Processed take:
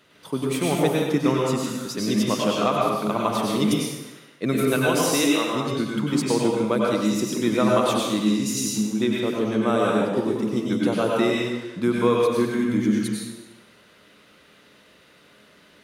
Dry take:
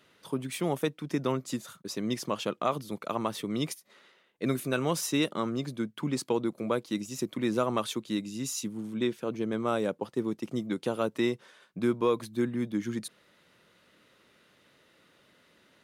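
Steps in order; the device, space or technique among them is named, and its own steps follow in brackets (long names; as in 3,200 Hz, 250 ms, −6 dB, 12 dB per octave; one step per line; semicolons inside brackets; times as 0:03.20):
0:04.75–0:05.54: high-pass filter 170 Hz → 460 Hz 12 dB per octave
bathroom (convolution reverb RT60 1.1 s, pre-delay 89 ms, DRR −3.5 dB)
level +4.5 dB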